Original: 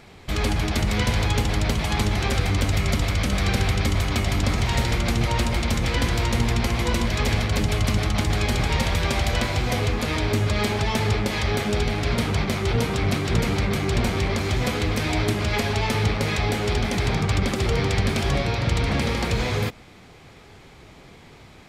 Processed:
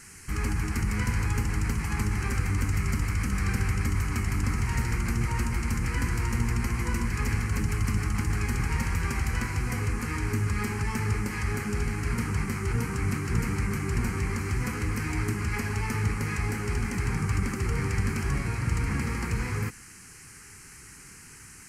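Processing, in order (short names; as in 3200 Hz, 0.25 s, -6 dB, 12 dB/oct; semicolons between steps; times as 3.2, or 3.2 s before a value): band noise 1400–10000 Hz -42 dBFS; fixed phaser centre 1500 Hz, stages 4; gain -4 dB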